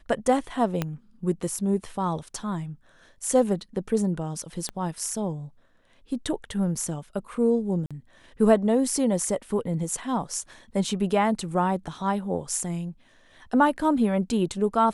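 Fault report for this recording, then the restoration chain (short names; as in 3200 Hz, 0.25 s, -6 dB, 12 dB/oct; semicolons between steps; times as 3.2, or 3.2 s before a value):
0.82 pop -12 dBFS
4.69 pop -18 dBFS
7.86–7.91 gap 46 ms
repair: de-click; interpolate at 7.86, 46 ms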